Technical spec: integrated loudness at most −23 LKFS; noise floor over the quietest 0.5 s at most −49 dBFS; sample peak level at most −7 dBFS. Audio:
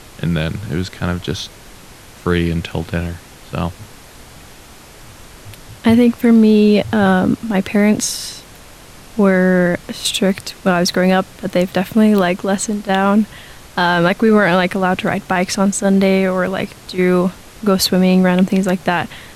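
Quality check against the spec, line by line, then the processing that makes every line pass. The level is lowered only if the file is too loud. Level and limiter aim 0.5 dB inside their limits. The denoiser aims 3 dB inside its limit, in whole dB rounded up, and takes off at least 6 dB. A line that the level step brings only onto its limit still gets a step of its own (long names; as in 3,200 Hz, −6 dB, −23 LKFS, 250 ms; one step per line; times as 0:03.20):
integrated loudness −15.5 LKFS: out of spec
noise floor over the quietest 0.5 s −39 dBFS: out of spec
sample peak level −4.0 dBFS: out of spec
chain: broadband denoise 6 dB, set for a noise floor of −39 dBFS
level −8 dB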